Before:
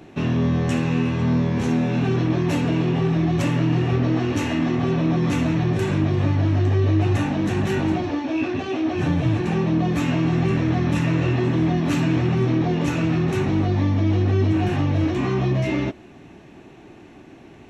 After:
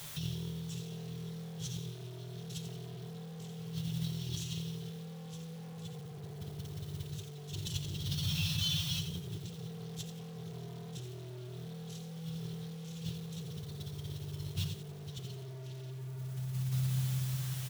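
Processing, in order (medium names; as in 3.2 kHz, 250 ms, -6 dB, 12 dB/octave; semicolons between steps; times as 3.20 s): Chebyshev band-stop 150–3200 Hz, order 5; peak limiter -22 dBFS, peak gain reduction 8.5 dB; flange 0.24 Hz, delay 4 ms, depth 1.8 ms, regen +11%; bucket-brigade echo 177 ms, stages 2048, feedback 81%, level -6.5 dB; word length cut 10-bit, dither triangular; comb 6.9 ms, depth 35%; hard clipper -32.5 dBFS, distortion -8 dB; high-pass 63 Hz 12 dB/octave; bass shelf 140 Hz -7 dB; compressor with a negative ratio -44 dBFS, ratio -0.5; bit-crushed delay 86 ms, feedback 35%, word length 9-bit, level -7.5 dB; trim +5.5 dB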